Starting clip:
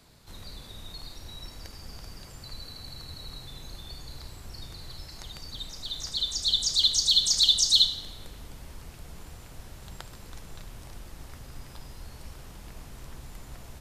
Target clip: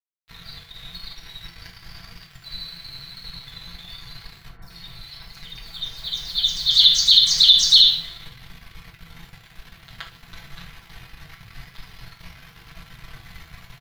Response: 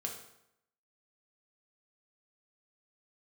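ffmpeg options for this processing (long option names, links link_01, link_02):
-filter_complex "[0:a]equalizer=frequency=120:width=3:gain=-8.5,aecho=1:1:6:0.97,aeval=exprs='sgn(val(0))*max(abs(val(0))-0.00841,0)':channel_layout=same,asettb=1/sr,asplit=3[link_01][link_02][link_03];[link_01]atrim=end=4.494[link_04];[link_02]atrim=start=4.49:end=6.71,asetpts=PTS-STARTPTS,afade=type=in:duration=0.004:curve=qsin,afade=type=out:start_time=2.216:duration=0.004:curve=qsin,acrossover=split=1700|5200[link_05][link_06][link_07];[link_07]adelay=130[link_08];[link_06]adelay=210[link_09];[link_05][link_09][link_08]amix=inputs=3:normalize=0,atrim=end_sample=97902[link_10];[link_03]atrim=start=6.706[link_11];[link_04][link_10]acrossfade=duration=0.004:curve1=hsin:curve2=qsin[link_12];[link_12][link_11]acrossfade=duration=0.004:curve1=qsin:curve2=hsin[link_13];[1:a]atrim=start_sample=2205,atrim=end_sample=3528[link_14];[link_13][link_14]afir=irnorm=-1:irlink=0,flanger=delay=3.7:depth=9.3:regen=67:speed=0.93:shape=triangular,equalizer=frequency=125:width_type=o:width=1:gain=8,equalizer=frequency=250:width_type=o:width=1:gain=-7,equalizer=frequency=500:width_type=o:width=1:gain=-10,equalizer=frequency=2000:width_type=o:width=1:gain=8,equalizer=frequency=4000:width_type=o:width=1:gain=6,equalizer=frequency=8000:width_type=o:width=1:gain=-12,alimiter=level_in=9.5dB:limit=-1dB:release=50:level=0:latency=1,volume=-1dB"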